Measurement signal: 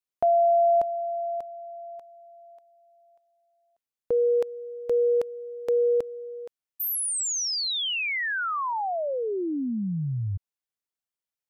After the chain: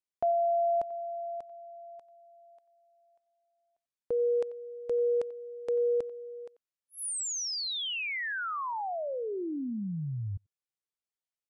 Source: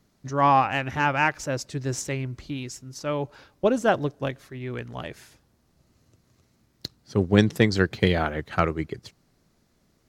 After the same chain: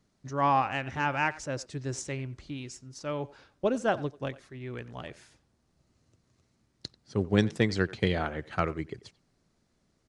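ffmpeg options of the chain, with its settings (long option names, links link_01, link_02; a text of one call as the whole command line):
ffmpeg -i in.wav -filter_complex "[0:a]asplit=2[link_01][link_02];[link_02]adelay=90,highpass=300,lowpass=3400,asoftclip=type=hard:threshold=-10dB,volume=-18dB[link_03];[link_01][link_03]amix=inputs=2:normalize=0,aresample=22050,aresample=44100,volume=-6dB" out.wav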